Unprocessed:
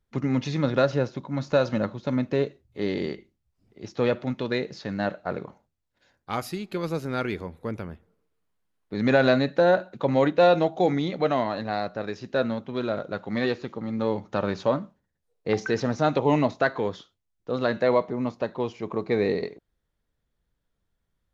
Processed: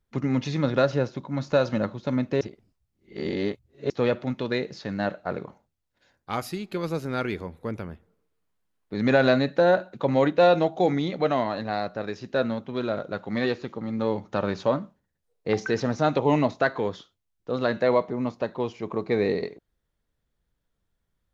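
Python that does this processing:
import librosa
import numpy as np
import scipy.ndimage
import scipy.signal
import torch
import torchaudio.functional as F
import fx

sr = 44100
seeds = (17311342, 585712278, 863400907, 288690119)

y = fx.edit(x, sr, fx.reverse_span(start_s=2.41, length_s=1.49), tone=tone)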